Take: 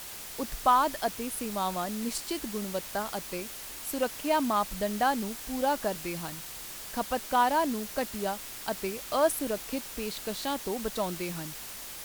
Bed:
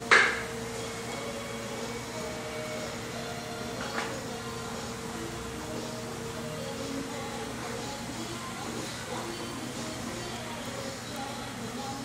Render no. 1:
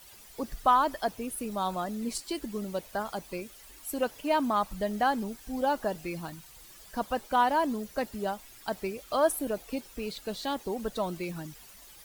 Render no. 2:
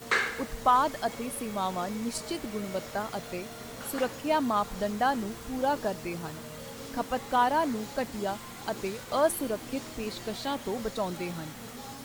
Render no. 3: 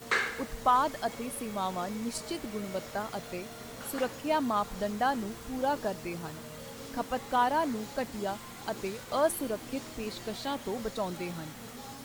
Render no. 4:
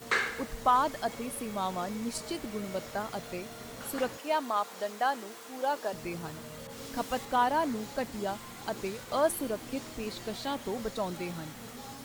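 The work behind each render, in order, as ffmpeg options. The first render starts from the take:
-af "afftdn=nr=13:nf=-42"
-filter_complex "[1:a]volume=0.473[s0];[0:a][s0]amix=inputs=2:normalize=0"
-af "volume=0.794"
-filter_complex "[0:a]asettb=1/sr,asplit=3[s0][s1][s2];[s0]atrim=end=4.174[s3];[s1]atrim=start=4.17:end=5.93,asetpts=PTS-STARTPTS,afade=t=in:d=0.004:c=qsin,afade=t=out:st=1.756:d=0.004:c=qsin,highpass=420[s4];[s2]atrim=start=5.926[s5];[s3][s4]acrossfade=d=0.004:c1=hsin:c2=qsin[s6];[s6][s5]acrossfade=d=0.004:c1=qsin:c2=hsin,asettb=1/sr,asplit=3[s7][s8][s9];[s7]atrim=end=6.674[s10];[s8]atrim=start=6.67:end=7.25,asetpts=PTS-STARTPTS,afade=t=in:d=0.004:c=qsin,afade=t=out:st=0.576:d=0.004:c=qsin,adynamicequalizer=threshold=0.00316:dfrequency=2300:dqfactor=0.7:tfrequency=2300:tqfactor=0.7:attack=5:release=100:ratio=0.375:range=2.5:mode=boostabove:tftype=highshelf[s11];[s9]atrim=start=7.246[s12];[s10][s11]acrossfade=d=0.004:c1=hsin:c2=qsin[s13];[s13][s12]acrossfade=d=0.004:c1=qsin:c2=hsin"

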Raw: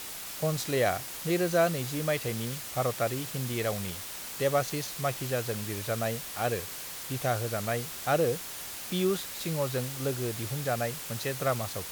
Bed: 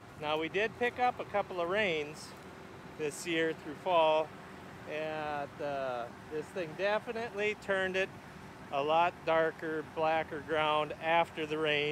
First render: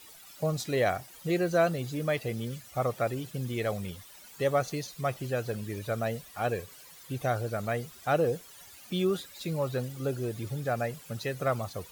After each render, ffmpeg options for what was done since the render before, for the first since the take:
-af "afftdn=nr=15:nf=-40"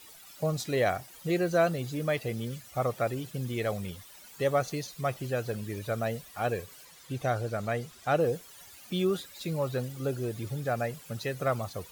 -filter_complex "[0:a]asettb=1/sr,asplit=3[s0][s1][s2];[s0]atrim=end=6.854[s3];[s1]atrim=start=6.85:end=8.2,asetpts=PTS-STARTPTS,afade=t=in:d=0.004:c=qsin,afade=t=out:st=1.346:d=0.004:c=qsin,acrossover=split=9600[s4][s5];[s5]acompressor=threshold=0.00141:ratio=4:attack=1:release=60[s6];[s4][s6]amix=inputs=2:normalize=0[s7];[s2]atrim=start=8.196[s8];[s3][s7]acrossfade=d=0.004:c1=hsin:c2=qsin[s9];[s9][s8]acrossfade=d=0.004:c1=qsin:c2=hsin"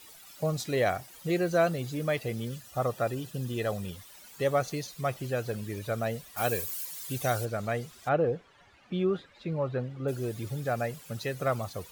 -filter_complex "[0:a]asettb=1/sr,asplit=3[s0][s1][s2];[s0]atrim=end=2.494[s3];[s1]atrim=start=2.49:end=3.93,asetpts=PTS-STARTPTS,afade=t=in:d=0.004:c=qsin,afade=t=out:st=1.436:d=0.004:c=qsin,asuperstop=centerf=2200:order=8:qfactor=8[s4];[s2]atrim=start=3.926[s5];[s3][s4]acrossfade=d=0.004:c1=hsin:c2=qsin[s6];[s6][s5]acrossfade=d=0.004:c1=qsin:c2=hsin,asplit=3[s7][s8][s9];[s7]afade=t=out:st=6.36:d=0.02[s10];[s8]aemphasis=mode=production:type=75kf,afade=t=in:st=6.36:d=0.02,afade=t=out:st=7.44:d=0.02[s11];[s9]afade=t=in:st=7.44:d=0.02[s12];[s10][s11][s12]amix=inputs=3:normalize=0,asplit=3[s13][s14][s15];[s13]afade=t=out:st=8.08:d=0.02[s16];[s14]lowpass=2200,afade=t=in:st=8.08:d=0.02,afade=t=out:st=10.07:d=0.02[s17];[s15]afade=t=in:st=10.07:d=0.02[s18];[s16][s17][s18]amix=inputs=3:normalize=0"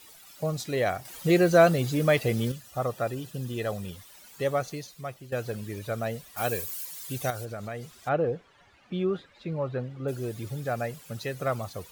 -filter_complex "[0:a]asettb=1/sr,asplit=3[s0][s1][s2];[s0]atrim=end=1.054[s3];[s1]atrim=start=1.05:end=2.52,asetpts=PTS-STARTPTS,afade=t=in:d=0.004:c=qsin,afade=t=out:st=1.466:d=0.004:c=qsin,acontrast=83[s4];[s2]atrim=start=2.516[s5];[s3][s4]acrossfade=d=0.004:c1=hsin:c2=qsin[s6];[s6][s5]acrossfade=d=0.004:c1=qsin:c2=hsin,asettb=1/sr,asplit=3[s7][s8][s9];[s7]atrim=end=7.304[s10];[s8]atrim=start=7.3:end=7.98,asetpts=PTS-STARTPTS,afade=t=in:d=0.004:c=qsin,afade=t=out:st=0.676:d=0.004:c=qsin,acompressor=threshold=0.02:ratio=2.5:attack=3.2:release=140:knee=1:detection=peak[s11];[s9]atrim=start=7.976[s12];[s10][s11]acrossfade=d=0.004:c1=hsin:c2=qsin[s13];[s13][s12]acrossfade=d=0.004:c1=qsin:c2=hsin,asplit=2[s14][s15];[s14]atrim=end=5.32,asetpts=PTS-STARTPTS,afade=t=out:st=4.46:d=0.86:silence=0.266073[s16];[s15]atrim=start=5.32,asetpts=PTS-STARTPTS,afade=t=in:d=0.004:c=hsin:silence=0.266073[s17];[s16][s17]concat=n=2:v=0:a=1"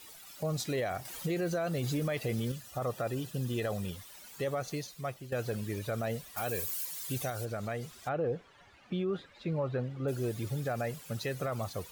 -af "acompressor=threshold=0.0501:ratio=6,alimiter=level_in=1.12:limit=0.0631:level=0:latency=1:release=10,volume=0.891"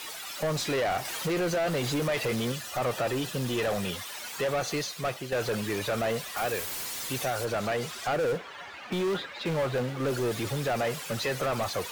-filter_complex "[0:a]acrossover=split=100[s0][s1];[s1]acrusher=bits=5:mode=log:mix=0:aa=0.000001[s2];[s0][s2]amix=inputs=2:normalize=0,asplit=2[s3][s4];[s4]highpass=f=720:p=1,volume=17.8,asoftclip=type=tanh:threshold=0.0944[s5];[s3][s5]amix=inputs=2:normalize=0,lowpass=f=3700:p=1,volume=0.501"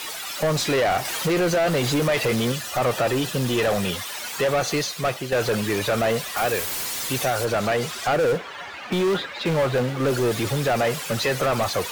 -af "volume=2.24"

